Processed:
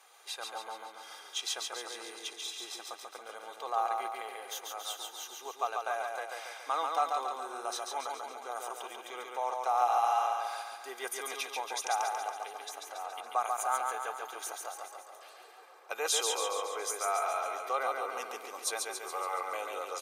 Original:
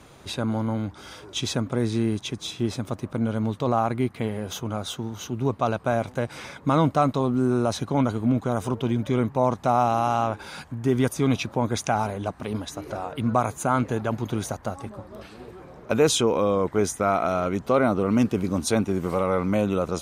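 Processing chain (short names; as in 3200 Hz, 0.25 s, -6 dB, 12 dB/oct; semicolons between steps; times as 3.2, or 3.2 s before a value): HPF 630 Hz 24 dB/oct; high shelf 9400 Hz +9 dB; comb 2.5 ms, depth 50%; on a send: feedback echo 0.14 s, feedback 57%, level -3.5 dB; on the sum: gain -8.5 dB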